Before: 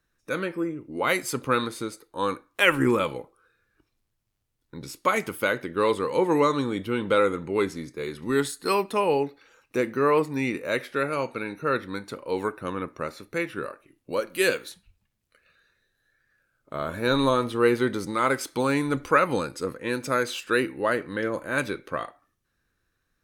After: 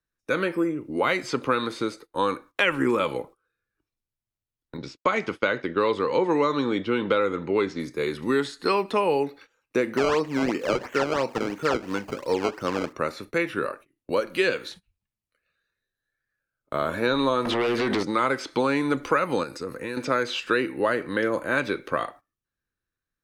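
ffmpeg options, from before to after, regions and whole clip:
ffmpeg -i in.wav -filter_complex "[0:a]asettb=1/sr,asplit=3[link_01][link_02][link_03];[link_01]atrim=end=4.774[link_04];[link_02]atrim=start=4.77:end=7.8,asetpts=PTS-STARTPTS,afade=type=in:duration=0.004:curve=qsin,afade=type=out:start_time=3.026:duration=0.004:curve=qsin,lowpass=frequency=5600:width=0.5412,lowpass=frequency=5600:width=1.3066,agate=range=-33dB:threshold=-38dB:ratio=3:release=100:detection=peak[link_05];[link_03]atrim=start=7.796[link_06];[link_04][link_05]acrossfade=duration=0.004:curve1=hsin:curve2=qsin[link_07];[link_07][link_06]acrossfade=duration=0.004:curve1=qsin:curve2=hsin,asettb=1/sr,asplit=3[link_08][link_09][link_10];[link_08]atrim=end=9.974[link_11];[link_09]atrim=start=9.97:end=12.93,asetpts=PTS-STARTPTS,afade=type=in:duration=0.004:curve=qsin,afade=type=out:start_time=2.956:duration=0.004:curve=qsin,acrusher=samples=17:mix=1:aa=0.000001:lfo=1:lforange=17:lforate=2.9,equalizer=frequency=3600:width_type=o:width=0.4:gain=-7.5[link_12];[link_10]atrim=start=12.926[link_13];[link_11][link_12]acrossfade=duration=0.004:curve1=hsin:curve2=qsin[link_14];[link_14][link_13]acrossfade=duration=0.004:curve1=qsin:curve2=hsin,asettb=1/sr,asplit=3[link_15][link_16][link_17];[link_15]atrim=end=17.454[link_18];[link_16]atrim=start=17.45:end=18.03,asetpts=PTS-STARTPTS,afade=type=in:duration=0.004:curve=qsin,afade=type=out:start_time=0.576:duration=0.004:curve=qsin,acompressor=threshold=-30dB:ratio=16:attack=3.2:release=140:knee=1:detection=peak,aeval=exprs='0.0668*sin(PI/2*2.82*val(0)/0.0668)':channel_layout=same[link_19];[link_17]atrim=start=18.026[link_20];[link_18][link_19]acrossfade=duration=0.004:curve1=hsin:curve2=qsin[link_21];[link_21][link_20]acrossfade=duration=0.004:curve1=qsin:curve2=hsin,asettb=1/sr,asplit=3[link_22][link_23][link_24];[link_22]atrim=end=19.434[link_25];[link_23]atrim=start=19.43:end=19.97,asetpts=PTS-STARTPTS,afade=type=in:duration=0.004:curve=qsin,afade=type=out:start_time=0.536:duration=0.004:curve=qsin,highshelf=frequency=8200:gain=10,bandreject=frequency=3200:width=5.4,acompressor=threshold=-35dB:ratio=4:attack=3.2:release=140:knee=1:detection=peak[link_26];[link_24]atrim=start=19.966[link_27];[link_25][link_26]acrossfade=duration=0.004:curve1=hsin:curve2=qsin[link_28];[link_28][link_27]acrossfade=duration=0.004:curve1=qsin:curve2=hsin,acrossover=split=6500[link_29][link_30];[link_30]acompressor=threshold=-58dB:ratio=4:attack=1:release=60[link_31];[link_29][link_31]amix=inputs=2:normalize=0,agate=range=-19dB:threshold=-48dB:ratio=16:detection=peak,acrossover=split=200|5900[link_32][link_33][link_34];[link_32]acompressor=threshold=-48dB:ratio=4[link_35];[link_33]acompressor=threshold=-26dB:ratio=4[link_36];[link_34]acompressor=threshold=-57dB:ratio=4[link_37];[link_35][link_36][link_37]amix=inputs=3:normalize=0,volume=6dB" out.wav

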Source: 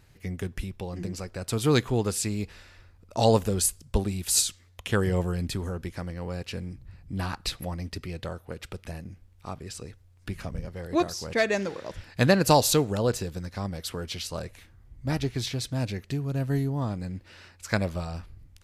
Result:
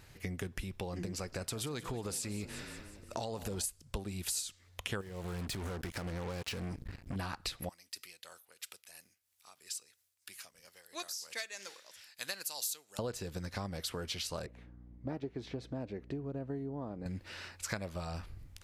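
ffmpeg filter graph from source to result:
ffmpeg -i in.wav -filter_complex "[0:a]asettb=1/sr,asplit=3[link_01][link_02][link_03];[link_01]atrim=end=1.144[link_04];[link_02]atrim=start=1.14:end=3.64,asetpts=PTS-STARTPTS,afade=type=in:duration=0.004:curve=qsin,afade=type=out:start_time=2.496:duration=0.004:curve=qsin,acompressor=threshold=-28dB:ratio=6:attack=3.2:release=140:knee=1:detection=peak,asplit=6[link_05][link_06][link_07][link_08][link_09][link_10];[link_06]adelay=180,afreqshift=33,volume=-16.5dB[link_11];[link_07]adelay=360,afreqshift=66,volume=-21.4dB[link_12];[link_08]adelay=540,afreqshift=99,volume=-26.3dB[link_13];[link_09]adelay=720,afreqshift=132,volume=-31.1dB[link_14];[link_10]adelay=900,afreqshift=165,volume=-36dB[link_15];[link_05][link_11][link_12][link_13][link_14][link_15]amix=inputs=6:normalize=0,atrim=end_sample=110250[link_16];[link_03]atrim=start=3.636[link_17];[link_04][link_16]acrossfade=duration=0.004:curve1=hsin:curve2=qsin[link_18];[link_18][link_17]acrossfade=duration=0.004:curve1=qsin:curve2=hsin,asettb=1/sr,asplit=3[link_19][link_20][link_21];[link_19]atrim=end=5.014[link_22];[link_20]atrim=start=5.01:end=7.16,asetpts=PTS-STARTPTS,afade=type=in:duration=0.004:curve=qsin,afade=type=out:start_time=2.146:duration=0.004:curve=qsin,aeval=exprs='val(0)+0.5*0.0126*sgn(val(0))':channel_layout=same,acrusher=bits=5:mix=0:aa=0.5,acompressor=threshold=-34dB:ratio=6:attack=3.2:release=140:knee=1:detection=peak[link_23];[link_21]atrim=start=7.156[link_24];[link_22][link_23]acrossfade=duration=0.004:curve1=hsin:curve2=qsin[link_25];[link_25][link_24]acrossfade=duration=0.004:curve1=qsin:curve2=hsin,asettb=1/sr,asplit=3[link_26][link_27][link_28];[link_26]atrim=end=7.694[link_29];[link_27]atrim=start=7.69:end=12.99,asetpts=PTS-STARTPTS,afade=type=in:duration=0.004:curve=qsin,afade=type=out:start_time=5.296:duration=0.004:curve=qsin,aderivative,tremolo=f=3:d=0.57[link_30];[link_28]atrim=start=12.986[link_31];[link_29][link_30]acrossfade=duration=0.004:curve1=hsin:curve2=qsin[link_32];[link_32][link_31]acrossfade=duration=0.004:curve1=qsin:curve2=hsin,asettb=1/sr,asplit=3[link_33][link_34][link_35];[link_33]atrim=end=14.464[link_36];[link_34]atrim=start=14.46:end=17.06,asetpts=PTS-STARTPTS,afade=type=in:duration=0.004:curve=qsin,afade=type=out:start_time=2.596:duration=0.004:curve=qsin,bandpass=frequency=390:width_type=q:width=0.96,aeval=exprs='val(0)+0.00251*(sin(2*PI*60*n/s)+sin(2*PI*2*60*n/s)/2+sin(2*PI*3*60*n/s)/3+sin(2*PI*4*60*n/s)/4+sin(2*PI*5*60*n/s)/5)':channel_layout=same[link_37];[link_35]atrim=start=17.056[link_38];[link_36][link_37]acrossfade=duration=0.004:curve1=hsin:curve2=qsin[link_39];[link_39][link_38]acrossfade=duration=0.004:curve1=qsin:curve2=hsin,lowshelf=frequency=360:gain=-5,acompressor=threshold=-40dB:ratio=6,volume=4dB" out.wav

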